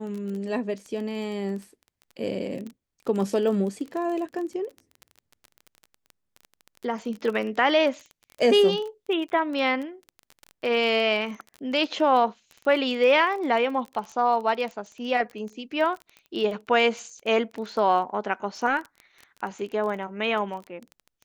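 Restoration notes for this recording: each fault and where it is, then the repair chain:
crackle 20 per s -32 dBFS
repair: de-click

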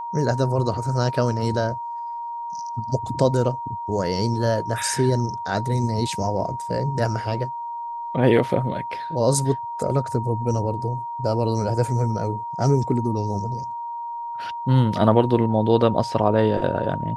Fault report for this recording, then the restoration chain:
whine 940 Hz -28 dBFS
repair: band-stop 940 Hz, Q 30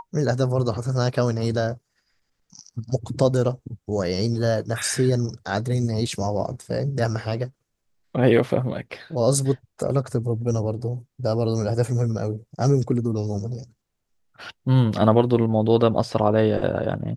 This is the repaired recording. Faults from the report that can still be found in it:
nothing left

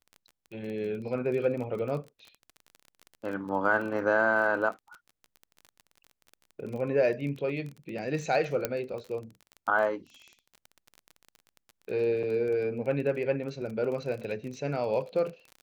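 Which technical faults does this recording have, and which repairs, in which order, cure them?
crackle 26 per s -36 dBFS
8.65 s: pop -12 dBFS
12.23–12.24 s: dropout 5.8 ms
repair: de-click; interpolate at 12.23 s, 5.8 ms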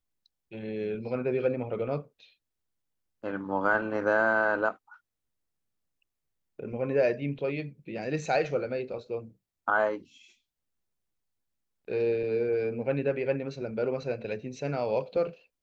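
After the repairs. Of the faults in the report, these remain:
nothing left

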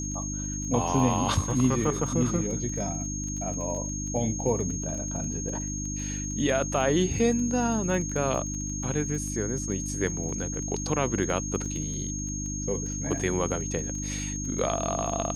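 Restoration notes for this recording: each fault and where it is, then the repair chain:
crackle 22 per s -34 dBFS
hum 50 Hz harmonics 6 -34 dBFS
whine 6.5 kHz -34 dBFS
11.65 s: dropout 4.7 ms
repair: de-click; band-stop 6.5 kHz, Q 30; de-hum 50 Hz, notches 6; interpolate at 11.65 s, 4.7 ms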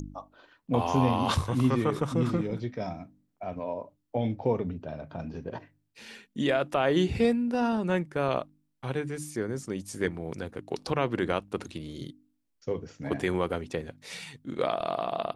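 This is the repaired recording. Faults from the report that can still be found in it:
nothing left

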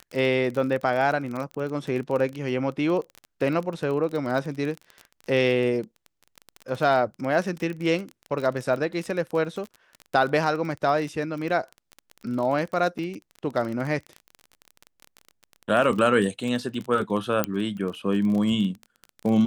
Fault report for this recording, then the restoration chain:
crackle 27 per s -29 dBFS
12.98–12.99 s: dropout 6.7 ms
17.44 s: pop -7 dBFS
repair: de-click; interpolate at 12.98 s, 6.7 ms

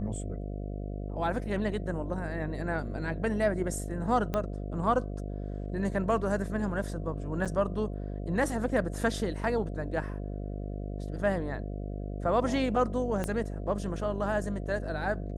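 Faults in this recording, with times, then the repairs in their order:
buzz 50 Hz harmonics 14 -36 dBFS
4.34 s: pop -17 dBFS
7.45–7.46 s: dropout 6.8 ms
13.24 s: pop -18 dBFS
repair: de-click; de-hum 50 Hz, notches 14; interpolate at 7.45 s, 6.8 ms

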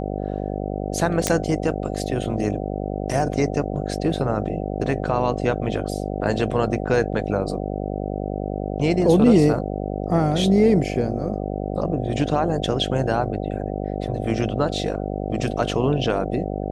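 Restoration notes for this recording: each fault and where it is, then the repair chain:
buzz 50 Hz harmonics 15 -27 dBFS
1.27 s: pop -4 dBFS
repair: de-click; de-hum 50 Hz, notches 15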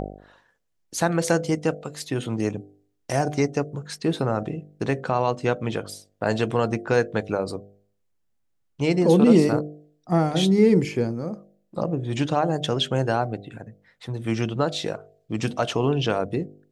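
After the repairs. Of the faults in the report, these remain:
nothing left

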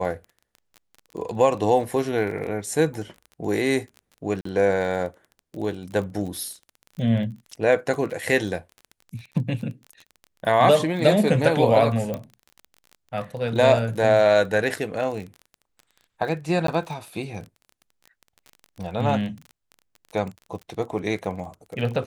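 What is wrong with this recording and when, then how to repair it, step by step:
crackle 25 per s -32 dBFS
4.41–4.45 s: dropout 44 ms
12.14 s: pop -16 dBFS
16.67–16.68 s: dropout 13 ms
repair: de-click; interpolate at 4.41 s, 44 ms; interpolate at 16.67 s, 13 ms

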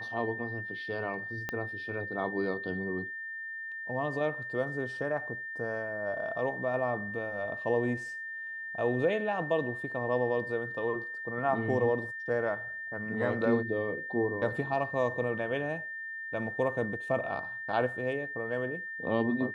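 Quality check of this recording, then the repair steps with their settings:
whine 1.8 kHz -37 dBFS
1.49 s: pop -19 dBFS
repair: de-click; band-stop 1.8 kHz, Q 30

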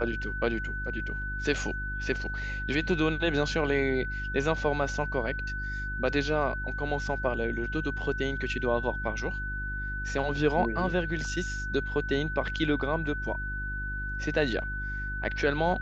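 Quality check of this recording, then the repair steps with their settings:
hum 50 Hz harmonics 7 -36 dBFS
whine 1.5 kHz -34 dBFS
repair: de-hum 50 Hz, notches 7; band-stop 1.5 kHz, Q 30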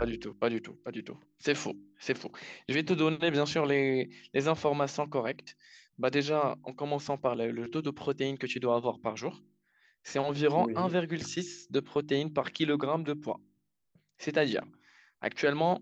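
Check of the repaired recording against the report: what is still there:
nothing left

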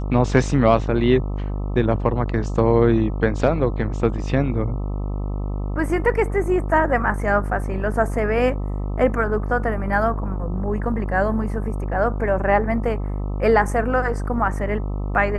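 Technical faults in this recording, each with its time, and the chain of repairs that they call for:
buzz 50 Hz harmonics 26 -25 dBFS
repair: de-hum 50 Hz, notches 26

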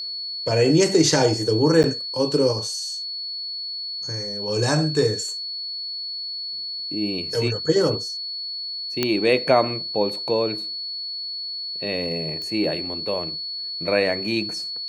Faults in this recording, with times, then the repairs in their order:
whine 4.4 kHz -28 dBFS
1.83–1.84 s: dropout 9.3 ms
9.03 s: pop -6 dBFS
12.42 s: pop -21 dBFS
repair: de-click; band-stop 4.4 kHz, Q 30; interpolate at 1.83 s, 9.3 ms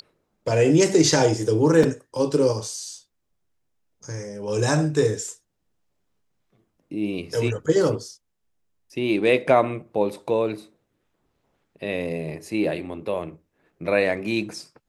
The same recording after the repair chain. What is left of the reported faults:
nothing left

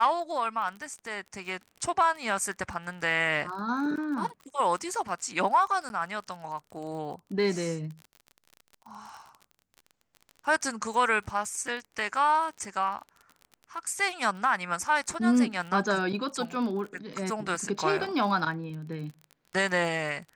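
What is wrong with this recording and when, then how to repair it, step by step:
crackle 32 per s -37 dBFS
5.89–5.90 s: dropout 11 ms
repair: de-click; interpolate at 5.89 s, 11 ms

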